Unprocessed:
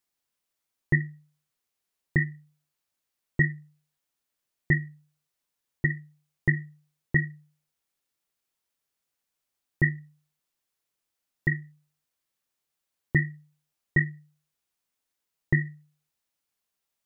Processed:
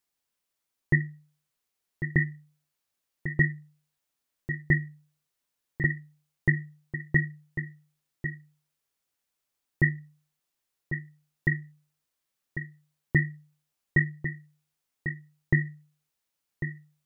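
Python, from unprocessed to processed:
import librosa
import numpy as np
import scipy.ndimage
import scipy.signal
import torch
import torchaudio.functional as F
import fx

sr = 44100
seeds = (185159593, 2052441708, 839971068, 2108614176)

y = x + 10.0 ** (-9.5 / 20.0) * np.pad(x, (int(1097 * sr / 1000.0), 0))[:len(x)]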